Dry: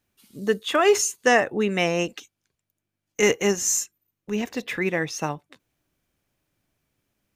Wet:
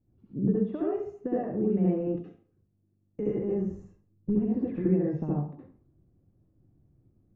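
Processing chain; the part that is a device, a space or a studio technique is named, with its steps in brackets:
television next door (downward compressor 5 to 1, threshold −32 dBFS, peak gain reduction 17 dB; low-pass filter 280 Hz 12 dB per octave; convolution reverb RT60 0.50 s, pre-delay 62 ms, DRR −6 dB)
0:03.71–0:04.35: low-shelf EQ 120 Hz +11.5 dB
level +7.5 dB

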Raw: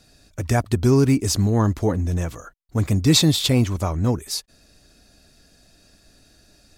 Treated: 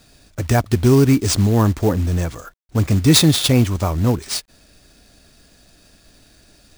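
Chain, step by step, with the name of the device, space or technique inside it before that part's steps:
early companding sampler (sample-rate reduction 14,000 Hz, jitter 0%; log-companded quantiser 6 bits)
level +3.5 dB

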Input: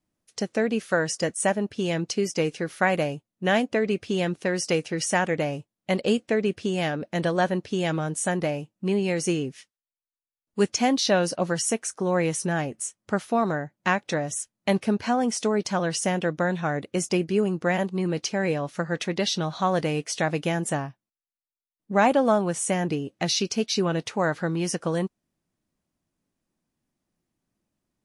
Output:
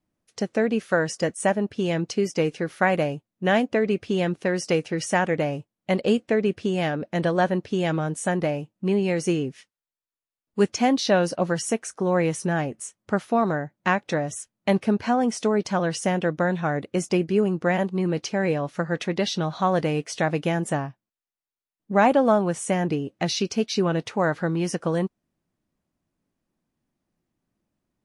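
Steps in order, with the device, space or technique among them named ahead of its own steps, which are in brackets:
behind a face mask (high-shelf EQ 3,500 Hz −7.5 dB)
level +2 dB

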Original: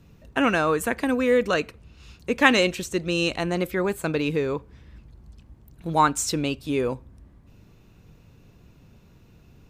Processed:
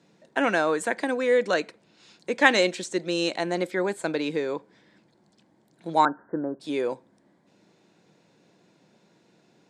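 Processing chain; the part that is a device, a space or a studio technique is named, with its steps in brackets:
0:06.05–0:06.60: Butterworth low-pass 1,700 Hz 96 dB per octave
television speaker (loudspeaker in its box 220–8,400 Hz, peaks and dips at 250 Hz −9 dB, 430 Hz −5 dB, 1,200 Hz −9 dB, 2,700 Hz −9 dB, 6,000 Hz −4 dB)
level +2 dB

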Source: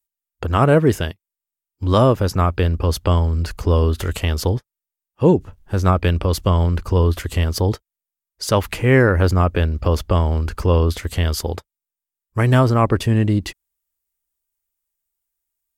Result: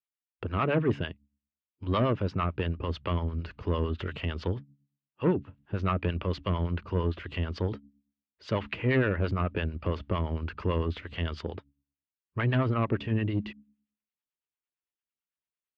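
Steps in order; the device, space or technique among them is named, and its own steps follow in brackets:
hum removal 70.4 Hz, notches 4
guitar amplifier with harmonic tremolo (two-band tremolo in antiphase 8.9 Hz, depth 70%, crossover 610 Hz; soft clipping −13 dBFS, distortion −15 dB; loudspeaker in its box 100–3,400 Hz, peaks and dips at 510 Hz −3 dB, 770 Hz −6 dB, 2,700 Hz +4 dB)
level −4.5 dB

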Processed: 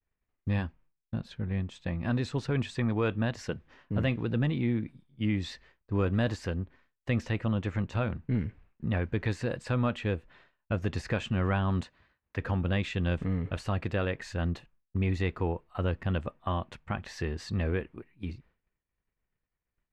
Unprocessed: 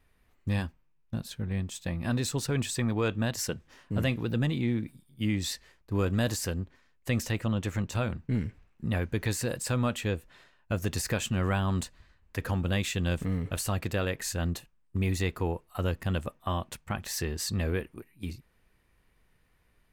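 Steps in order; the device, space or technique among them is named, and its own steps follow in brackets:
hearing-loss simulation (low-pass filter 2,900 Hz 12 dB per octave; downward expander −54 dBFS)
0:11.83–0:12.37: high-pass filter 220 Hz 6 dB per octave

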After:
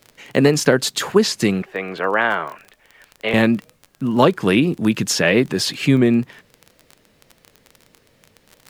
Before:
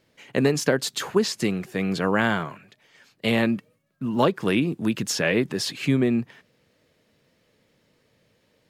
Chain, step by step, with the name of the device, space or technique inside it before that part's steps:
0:01.62–0:03.34: three-way crossover with the lows and the highs turned down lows −19 dB, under 390 Hz, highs −22 dB, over 3,100 Hz
vinyl LP (tape wow and flutter; surface crackle 22 per second −33 dBFS; pink noise bed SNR 44 dB)
level +6.5 dB

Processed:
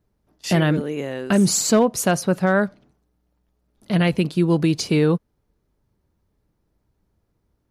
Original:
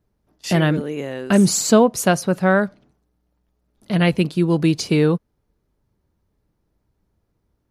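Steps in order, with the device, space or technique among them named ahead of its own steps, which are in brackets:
clipper into limiter (hard clipping −6 dBFS, distortion −30 dB; brickwall limiter −9 dBFS, peak gain reduction 3 dB)

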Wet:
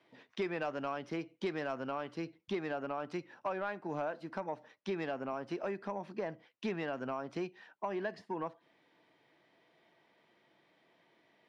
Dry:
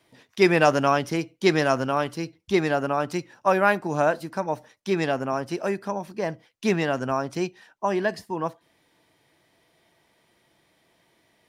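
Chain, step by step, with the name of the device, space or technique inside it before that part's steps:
AM radio (band-pass filter 180–3,300 Hz; downward compressor 5 to 1, threshold −30 dBFS, peak gain reduction 15.5 dB; soft clipping −21.5 dBFS, distortion −21 dB)
level −3.5 dB

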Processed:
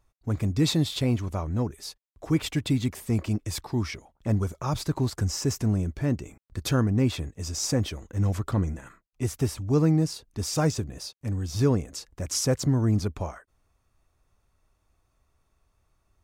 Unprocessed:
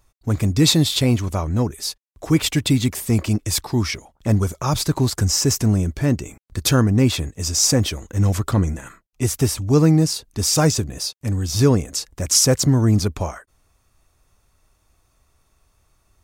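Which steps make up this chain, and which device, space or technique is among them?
behind a face mask (high-shelf EQ 3,400 Hz −7.5 dB)
level −7 dB

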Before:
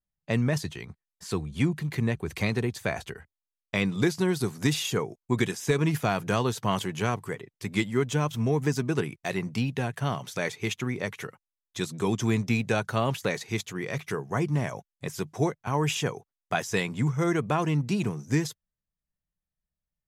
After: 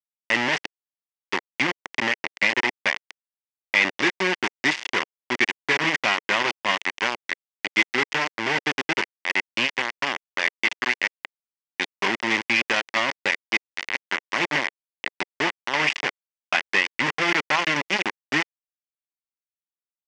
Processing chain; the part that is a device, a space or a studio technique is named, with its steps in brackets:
hand-held game console (bit reduction 4 bits; loudspeaker in its box 440–5,100 Hz, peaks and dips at 460 Hz −9 dB, 680 Hz −7 dB, 1,300 Hz −5 dB, 2,000 Hz +8 dB, 2,800 Hz +3 dB, 4,000 Hz −7 dB)
level +6 dB

